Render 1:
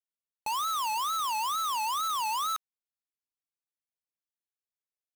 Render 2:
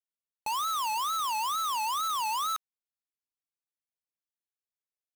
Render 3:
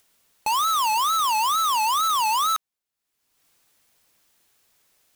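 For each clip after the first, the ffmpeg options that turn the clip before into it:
ffmpeg -i in.wav -af anull out.wav
ffmpeg -i in.wav -af "acompressor=mode=upward:threshold=-54dB:ratio=2.5,volume=8.5dB" out.wav

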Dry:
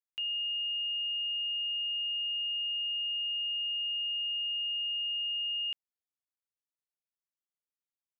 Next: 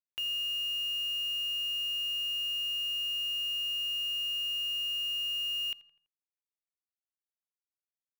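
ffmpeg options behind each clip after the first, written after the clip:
ffmpeg -i in.wav -filter_complex "[0:a]acrusher=bits=8:dc=4:mix=0:aa=0.000001,acompressor=mode=upward:threshold=-43dB:ratio=2.5,asplit=2[link_01][link_02];[link_02]adelay=83,lowpass=frequency=2800:poles=1,volume=-17.5dB,asplit=2[link_03][link_04];[link_04]adelay=83,lowpass=frequency=2800:poles=1,volume=0.5,asplit=2[link_05][link_06];[link_06]adelay=83,lowpass=frequency=2800:poles=1,volume=0.5,asplit=2[link_07][link_08];[link_08]adelay=83,lowpass=frequency=2800:poles=1,volume=0.5[link_09];[link_01][link_03][link_05][link_07][link_09]amix=inputs=5:normalize=0" out.wav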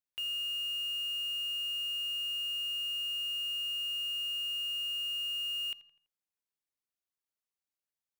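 ffmpeg -i in.wav -af "asoftclip=type=tanh:threshold=-31dB" out.wav

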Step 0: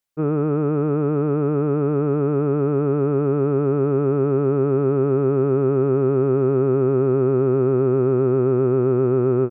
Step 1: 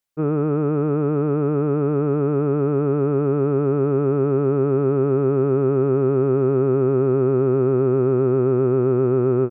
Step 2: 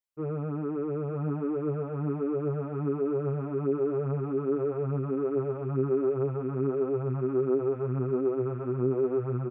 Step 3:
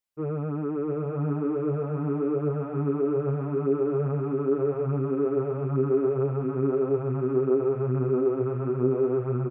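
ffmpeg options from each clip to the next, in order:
ffmpeg -i in.wav -af anull out.wav
ffmpeg -i in.wav -filter_complex "[0:a]aecho=1:1:924:0.596,asplit=2[link_01][link_02];[link_02]adelay=7.1,afreqshift=1.3[link_03];[link_01][link_03]amix=inputs=2:normalize=1,volume=-8.5dB" out.wav
ffmpeg -i in.wav -af "aecho=1:1:697:0.398,volume=2.5dB" out.wav

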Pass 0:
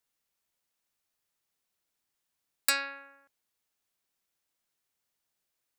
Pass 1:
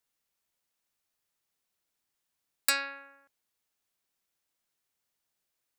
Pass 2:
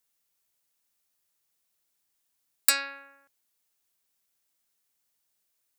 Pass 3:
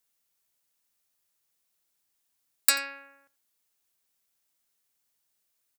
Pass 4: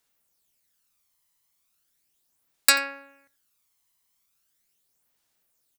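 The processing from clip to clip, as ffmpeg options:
ffmpeg -i in.wav -af anull out.wav
ffmpeg -i in.wav -af "highshelf=frequency=5300:gain=8" out.wav
ffmpeg -i in.wav -af "aecho=1:1:87:0.0891" out.wav
ffmpeg -i in.wav -af "aphaser=in_gain=1:out_gain=1:delay=1:decay=0.49:speed=0.38:type=sinusoidal,volume=2.5dB" out.wav

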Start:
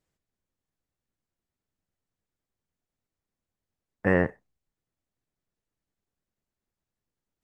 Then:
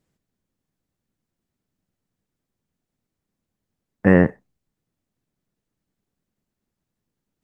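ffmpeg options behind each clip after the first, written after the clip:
ffmpeg -i in.wav -af "equalizer=frequency=200:width=0.76:gain=8,volume=4dB" out.wav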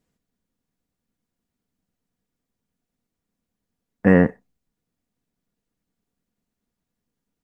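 ffmpeg -i in.wav -af "aecho=1:1:4.2:0.32,volume=-1dB" out.wav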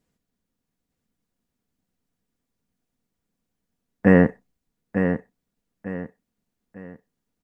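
ffmpeg -i in.wav -af "aecho=1:1:899|1798|2697|3596:0.422|0.143|0.0487|0.0166" out.wav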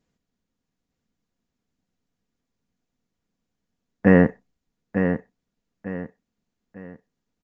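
ffmpeg -i in.wav -af "aresample=16000,aresample=44100" out.wav

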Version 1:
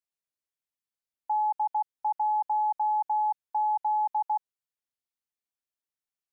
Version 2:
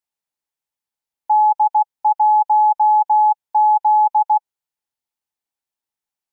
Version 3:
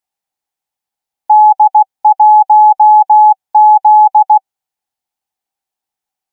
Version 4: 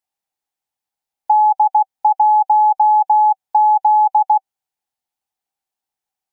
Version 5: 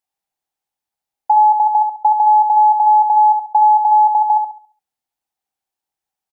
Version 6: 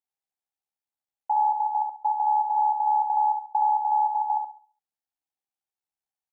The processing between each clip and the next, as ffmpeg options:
ffmpeg -i in.wav -af "equalizer=frequency=850:width_type=o:width=0.28:gain=9.5,volume=3.5dB" out.wav
ffmpeg -i in.wav -af "equalizer=frequency=770:width_type=o:width=0.21:gain=11.5,volume=4dB" out.wav
ffmpeg -i in.wav -af "acompressor=threshold=-7dB:ratio=6,volume=-3dB" out.wav
ffmpeg -i in.wav -filter_complex "[0:a]asplit=2[link_01][link_02];[link_02]adelay=69,lowpass=frequency=880:poles=1,volume=-3dB,asplit=2[link_03][link_04];[link_04]adelay=69,lowpass=frequency=880:poles=1,volume=0.45,asplit=2[link_05][link_06];[link_06]adelay=69,lowpass=frequency=880:poles=1,volume=0.45,asplit=2[link_07][link_08];[link_08]adelay=69,lowpass=frequency=880:poles=1,volume=0.45,asplit=2[link_09][link_10];[link_10]adelay=69,lowpass=frequency=880:poles=1,volume=0.45,asplit=2[link_11][link_12];[link_12]adelay=69,lowpass=frequency=880:poles=1,volume=0.45[link_13];[link_01][link_03][link_05][link_07][link_09][link_11][link_13]amix=inputs=7:normalize=0" out.wav
ffmpeg -i in.wav -af "tremolo=f=71:d=0.571,volume=-9dB" out.wav

